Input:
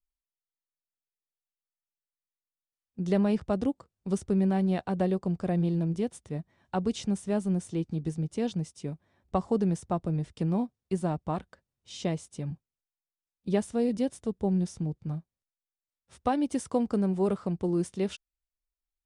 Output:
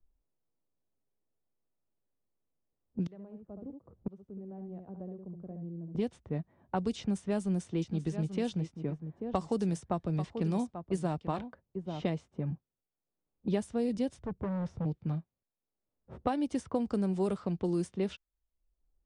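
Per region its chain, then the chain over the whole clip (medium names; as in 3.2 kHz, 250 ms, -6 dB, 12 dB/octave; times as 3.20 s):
3.04–5.95 s: delay 71 ms -6 dB + inverted gate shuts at -28 dBFS, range -28 dB
6.98–12.10 s: treble shelf 2.1 kHz +6 dB + delay 838 ms -13.5 dB
14.18–14.85 s: resonant low shelf 170 Hz +7 dB, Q 1.5 + hard clipper -32.5 dBFS
whole clip: level-controlled noise filter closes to 500 Hz, open at -23 dBFS; three bands compressed up and down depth 70%; trim -3 dB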